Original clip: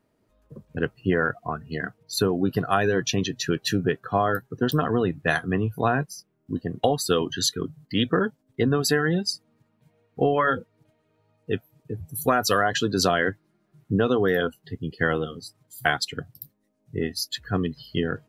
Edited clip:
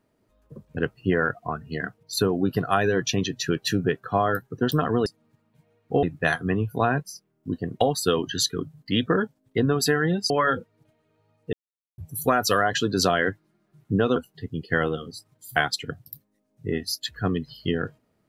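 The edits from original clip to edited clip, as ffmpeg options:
ffmpeg -i in.wav -filter_complex "[0:a]asplit=7[link_01][link_02][link_03][link_04][link_05][link_06][link_07];[link_01]atrim=end=5.062[link_08];[link_02]atrim=start=9.328:end=10.302[link_09];[link_03]atrim=start=5.058:end=9.332[link_10];[link_04]atrim=start=10.298:end=11.53,asetpts=PTS-STARTPTS,afade=type=out:start_time=1.228:duration=0.004:curve=hsin[link_11];[link_05]atrim=start=11.53:end=11.98,asetpts=PTS-STARTPTS,volume=0[link_12];[link_06]atrim=start=11.98:end=14.162,asetpts=PTS-STARTPTS,afade=type=in:duration=0.004:curve=hsin[link_13];[link_07]atrim=start=14.448[link_14];[link_08][link_09]acrossfade=duration=0.004:curve1=hsin:curve2=hsin[link_15];[link_15][link_10]acrossfade=duration=0.004:curve1=hsin:curve2=hsin[link_16];[link_11][link_12][link_13]concat=n=3:v=0:a=1[link_17];[link_16][link_17]acrossfade=duration=0.004:curve1=hsin:curve2=hsin[link_18];[link_18][link_14]acrossfade=duration=0.004:curve1=hsin:curve2=hsin" out.wav

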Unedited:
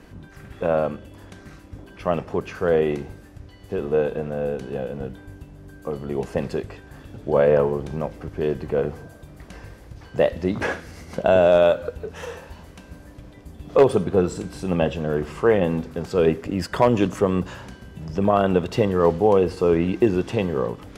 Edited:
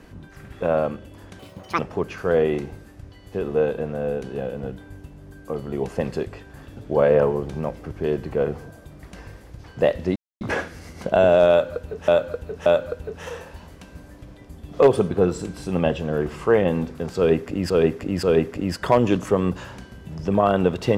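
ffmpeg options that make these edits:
ffmpeg -i in.wav -filter_complex "[0:a]asplit=8[link_01][link_02][link_03][link_04][link_05][link_06][link_07][link_08];[link_01]atrim=end=1.394[link_09];[link_02]atrim=start=1.39:end=2.16,asetpts=PTS-STARTPTS,asetrate=85113,aresample=44100,atrim=end_sample=17594,asetpts=PTS-STARTPTS[link_10];[link_03]atrim=start=2.156:end=10.53,asetpts=PTS-STARTPTS,afade=type=out:start_time=8.37:duration=0.004:curve=hsin,apad=pad_dur=0.25[link_11];[link_04]atrim=start=10.53:end=12.202,asetpts=PTS-STARTPTS,afade=type=in:duration=0.004:curve=hsin[link_12];[link_05]atrim=start=11.618:end=12.202[link_13];[link_06]atrim=start=11.618:end=16.662[link_14];[link_07]atrim=start=16.128:end=16.662[link_15];[link_08]atrim=start=16.128[link_16];[link_09][link_10]acrossfade=duration=0.004:curve1=hsin:curve2=hsin[link_17];[link_11][link_12]concat=n=2:v=0:a=1[link_18];[link_17][link_18]acrossfade=duration=0.004:curve1=hsin:curve2=hsin[link_19];[link_19][link_13]acrossfade=duration=0.004:curve1=hsin:curve2=hsin[link_20];[link_20][link_14]acrossfade=duration=0.004:curve1=hsin:curve2=hsin[link_21];[link_21][link_15]acrossfade=duration=0.004:curve1=hsin:curve2=hsin[link_22];[link_22][link_16]acrossfade=duration=0.004:curve1=hsin:curve2=hsin" out.wav

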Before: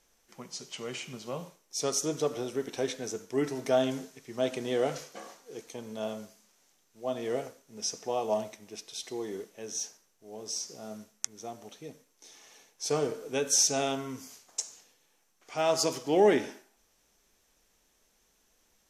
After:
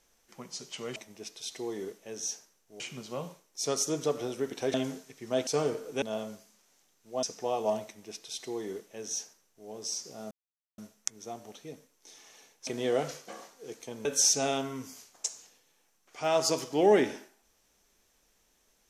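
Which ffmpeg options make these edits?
ffmpeg -i in.wav -filter_complex "[0:a]asplit=10[link_01][link_02][link_03][link_04][link_05][link_06][link_07][link_08][link_09][link_10];[link_01]atrim=end=0.962[link_11];[link_02]atrim=start=8.478:end=10.322[link_12];[link_03]atrim=start=0.958:end=2.902[link_13];[link_04]atrim=start=3.808:end=4.542[link_14];[link_05]atrim=start=12.838:end=13.392[link_15];[link_06]atrim=start=5.918:end=7.132[link_16];[link_07]atrim=start=7.868:end=10.95,asetpts=PTS-STARTPTS,afade=type=out:start_time=3.078:duration=0.004:curve=hsin,apad=pad_dur=0.47[link_17];[link_08]atrim=start=10.95:end=12.842,asetpts=PTS-STARTPTS,afade=type=in:duration=0.004:curve=hsin[link_18];[link_09]atrim=start=4.538:end=5.922[link_19];[link_10]atrim=start=13.388[link_20];[link_11][link_12]acrossfade=duration=0.004:curve1=hsin:curve2=hsin[link_21];[link_21][link_13]acrossfade=duration=0.004:curve1=hsin:curve2=hsin[link_22];[link_22][link_14]acrossfade=duration=0.004:curve1=hsin:curve2=hsin[link_23];[link_23][link_15]acrossfade=duration=0.004:curve1=hsin:curve2=hsin[link_24];[link_24][link_16]acrossfade=duration=0.004:curve1=hsin:curve2=hsin[link_25];[link_17][link_18]concat=n=2:v=0:a=1[link_26];[link_25][link_26]acrossfade=duration=0.004:curve1=hsin:curve2=hsin[link_27];[link_27][link_19]acrossfade=duration=0.004:curve1=hsin:curve2=hsin[link_28];[link_28][link_20]acrossfade=duration=0.004:curve1=hsin:curve2=hsin" out.wav

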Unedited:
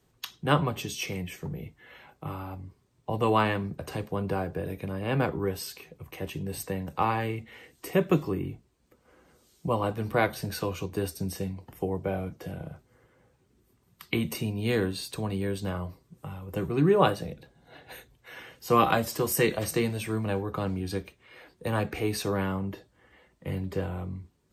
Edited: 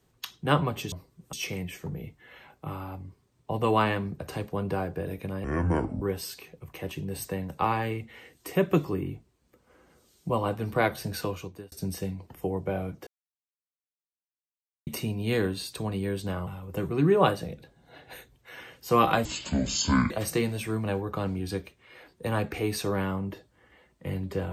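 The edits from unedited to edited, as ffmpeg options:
ffmpeg -i in.wav -filter_complex "[0:a]asplit=11[link_01][link_02][link_03][link_04][link_05][link_06][link_07][link_08][link_09][link_10][link_11];[link_01]atrim=end=0.922[link_12];[link_02]atrim=start=15.848:end=16.262[link_13];[link_03]atrim=start=0.918:end=5.034[link_14];[link_04]atrim=start=5.03:end=5.4,asetpts=PTS-STARTPTS,asetrate=28224,aresample=44100,atrim=end_sample=25495,asetpts=PTS-STARTPTS[link_15];[link_05]atrim=start=5.396:end=11.1,asetpts=PTS-STARTPTS,afade=type=out:start_time=5.224:duration=0.48[link_16];[link_06]atrim=start=11.1:end=12.45,asetpts=PTS-STARTPTS,afade=type=in:duration=0.004:curve=hsin,afade=type=out:start_time=1.346:duration=0.004:curve=hsin[link_17];[link_07]atrim=start=12.45:end=14.25,asetpts=PTS-STARTPTS,volume=0[link_18];[link_08]atrim=start=14.25:end=15.852,asetpts=PTS-STARTPTS,afade=type=in:duration=0.004:curve=hsin[link_19];[link_09]atrim=start=16.258:end=19.044[link_20];[link_10]atrim=start=19.04:end=19.51,asetpts=PTS-STARTPTS,asetrate=24255,aresample=44100,atrim=end_sample=37685,asetpts=PTS-STARTPTS[link_21];[link_11]atrim=start=19.506[link_22];[link_12][link_13]acrossfade=duration=0.004:curve1=hsin:curve2=hsin[link_23];[link_23][link_14]acrossfade=duration=0.004:curve1=hsin:curve2=hsin[link_24];[link_24][link_15]acrossfade=duration=0.004:curve1=hsin:curve2=hsin[link_25];[link_16][link_17][link_18][link_19]concat=n=4:v=0:a=1[link_26];[link_25][link_26]acrossfade=duration=0.004:curve1=hsin:curve2=hsin[link_27];[link_27][link_20]acrossfade=duration=0.004:curve1=hsin:curve2=hsin[link_28];[link_28][link_21]acrossfade=duration=0.004:curve1=hsin:curve2=hsin[link_29];[link_29][link_22]acrossfade=duration=0.004:curve1=hsin:curve2=hsin" out.wav

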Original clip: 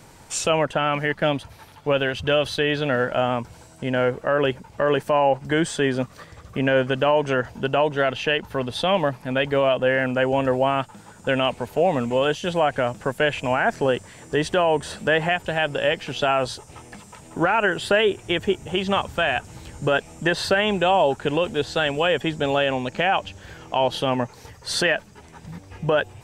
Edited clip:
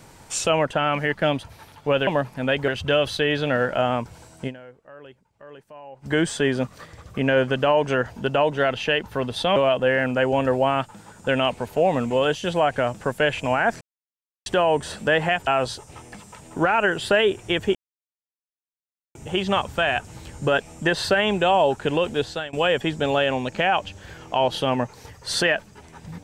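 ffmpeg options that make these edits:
ffmpeg -i in.wav -filter_complex "[0:a]asplit=11[link_01][link_02][link_03][link_04][link_05][link_06][link_07][link_08][link_09][link_10][link_11];[link_01]atrim=end=2.072[link_12];[link_02]atrim=start=8.948:end=9.562[link_13];[link_03]atrim=start=2.068:end=4.18,asetpts=PTS-STARTPTS,afade=type=out:start_time=1.792:duration=0.32:curve=exp:silence=0.0668344[link_14];[link_04]atrim=start=4.18:end=5.13,asetpts=PTS-STARTPTS,volume=-23.5dB[link_15];[link_05]atrim=start=5.13:end=8.952,asetpts=PTS-STARTPTS,afade=type=in:duration=0.32:curve=exp:silence=0.0668344[link_16];[link_06]atrim=start=9.558:end=13.81,asetpts=PTS-STARTPTS,afade=type=out:start_time=4.248:duration=0.004:curve=hsin[link_17];[link_07]atrim=start=13.81:end=14.46,asetpts=PTS-STARTPTS,volume=0[link_18];[link_08]atrim=start=14.46:end=15.472,asetpts=PTS-STARTPTS,afade=type=in:duration=0.004:curve=hsin[link_19];[link_09]atrim=start=16.268:end=18.55,asetpts=PTS-STARTPTS,afade=type=out:start_time=2.278:duration=0.004:curve=hsin,apad=pad_dur=1.4[link_20];[link_10]atrim=start=18.55:end=21.93,asetpts=PTS-STARTPTS,afade=type=in:duration=0.004:curve=hsin,afade=type=out:start_time=3.05:duration=0.33:silence=0.0707946[link_21];[link_11]atrim=start=21.93,asetpts=PTS-STARTPTS,afade=type=in:duration=0.004:curve=hsin:silence=0.0707946[link_22];[link_12][link_13]acrossfade=duration=0.004:curve1=hsin:curve2=hsin[link_23];[link_14][link_15][link_16]concat=n=3:v=0:a=1[link_24];[link_23][link_24]acrossfade=duration=0.004:curve1=hsin:curve2=hsin[link_25];[link_17][link_18][link_19]concat=n=3:v=0:a=1[link_26];[link_25][link_26]acrossfade=duration=0.004:curve1=hsin:curve2=hsin[link_27];[link_20][link_21][link_22]concat=n=3:v=0:a=1[link_28];[link_27][link_28]acrossfade=duration=0.004:curve1=hsin:curve2=hsin" out.wav

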